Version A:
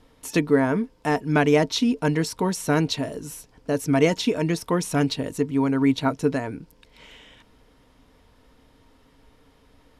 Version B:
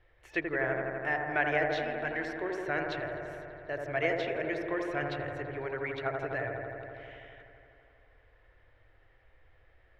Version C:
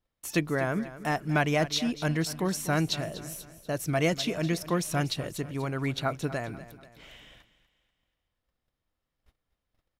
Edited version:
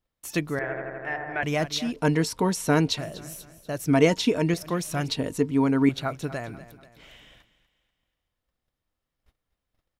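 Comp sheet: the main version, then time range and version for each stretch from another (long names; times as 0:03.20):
C
0:00.59–0:01.43: punch in from B
0:01.96–0:02.98: punch in from A
0:03.87–0:04.54: punch in from A
0:05.08–0:05.89: punch in from A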